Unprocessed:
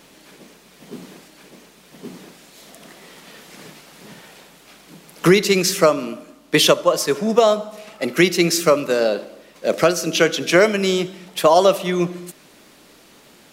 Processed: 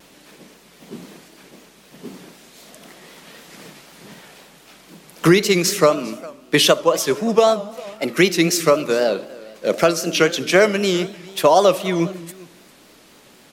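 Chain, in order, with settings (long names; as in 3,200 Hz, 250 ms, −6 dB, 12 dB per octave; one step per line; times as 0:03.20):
single-tap delay 404 ms −21.5 dB
pitch vibrato 3.9 Hz 99 cents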